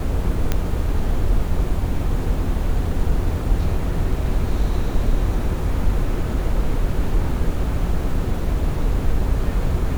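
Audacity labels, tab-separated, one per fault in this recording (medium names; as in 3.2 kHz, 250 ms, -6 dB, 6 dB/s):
0.520000	0.520000	pop -6 dBFS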